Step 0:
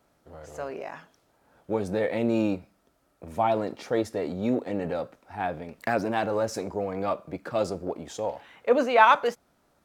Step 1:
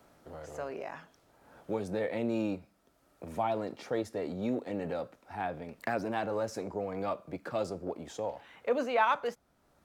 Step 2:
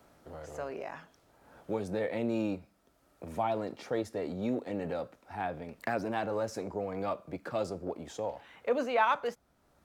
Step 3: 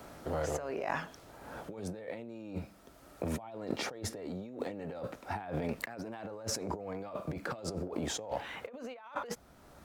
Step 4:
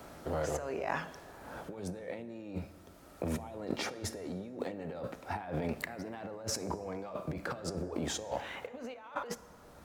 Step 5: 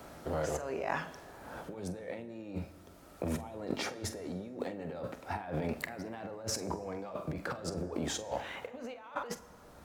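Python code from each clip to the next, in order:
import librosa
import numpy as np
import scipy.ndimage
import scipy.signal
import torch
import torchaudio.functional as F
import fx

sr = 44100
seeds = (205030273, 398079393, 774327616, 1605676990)

y1 = fx.band_squash(x, sr, depth_pct=40)
y1 = y1 * 10.0 ** (-6.5 / 20.0)
y2 = fx.peak_eq(y1, sr, hz=61.0, db=3.0, octaves=1.0)
y3 = fx.over_compress(y2, sr, threshold_db=-44.0, ratio=-1.0)
y3 = y3 * 10.0 ** (3.5 / 20.0)
y4 = fx.rev_plate(y3, sr, seeds[0], rt60_s=2.1, hf_ratio=0.55, predelay_ms=0, drr_db=14.0)
y5 = fx.doubler(y4, sr, ms=45.0, db=-14.0)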